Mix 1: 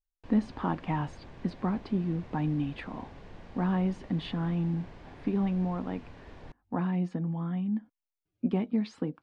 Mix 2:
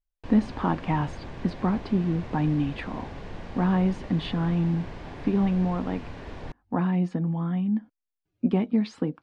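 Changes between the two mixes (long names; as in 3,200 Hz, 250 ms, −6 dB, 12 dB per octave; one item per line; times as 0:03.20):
speech +5.0 dB
background +9.5 dB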